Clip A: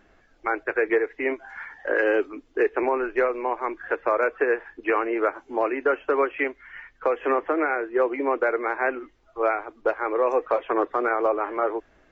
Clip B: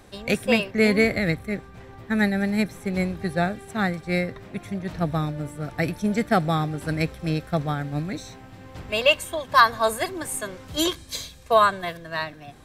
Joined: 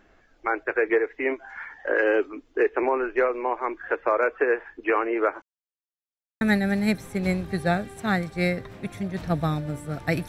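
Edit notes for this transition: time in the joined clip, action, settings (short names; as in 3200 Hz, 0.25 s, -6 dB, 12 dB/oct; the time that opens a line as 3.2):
clip A
5.42–6.41 mute
6.41 switch to clip B from 2.12 s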